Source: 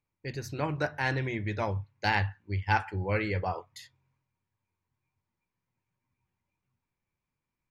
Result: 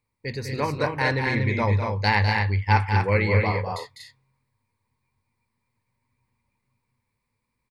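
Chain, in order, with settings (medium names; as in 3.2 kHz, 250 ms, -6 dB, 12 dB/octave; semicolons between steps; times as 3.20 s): rippled EQ curve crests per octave 0.94, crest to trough 8 dB; loudspeakers at several distances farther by 69 m -7 dB, 82 m -5 dB; trim +5 dB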